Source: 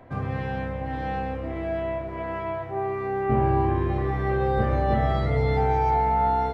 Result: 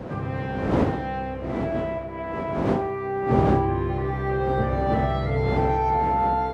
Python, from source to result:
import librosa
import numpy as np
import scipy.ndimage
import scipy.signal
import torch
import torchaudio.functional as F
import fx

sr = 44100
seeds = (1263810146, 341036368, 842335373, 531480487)

y = fx.dmg_wind(x, sr, seeds[0], corner_hz=410.0, level_db=-29.0)
y = scipy.signal.sosfilt(scipy.signal.butter(2, 67.0, 'highpass', fs=sr, output='sos'), y)